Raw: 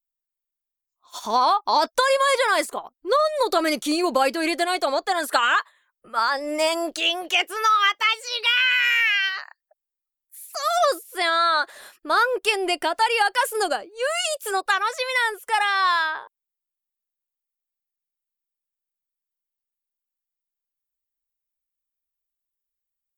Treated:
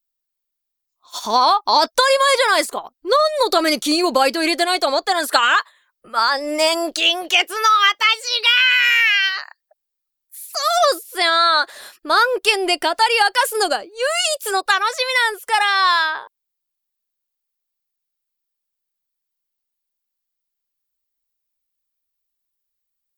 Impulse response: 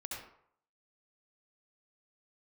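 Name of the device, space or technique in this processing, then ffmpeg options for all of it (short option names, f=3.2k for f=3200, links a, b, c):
presence and air boost: -af "equalizer=f=4.5k:t=o:w=0.88:g=5,highshelf=f=12k:g=3.5,volume=4dB"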